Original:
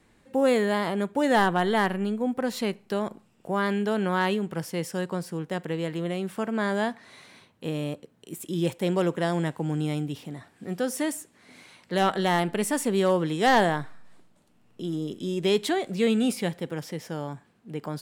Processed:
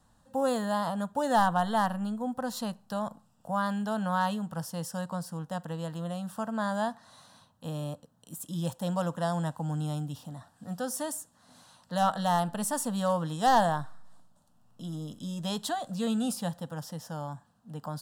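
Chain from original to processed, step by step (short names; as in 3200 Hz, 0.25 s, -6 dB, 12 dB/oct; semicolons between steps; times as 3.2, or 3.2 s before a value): fixed phaser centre 920 Hz, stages 4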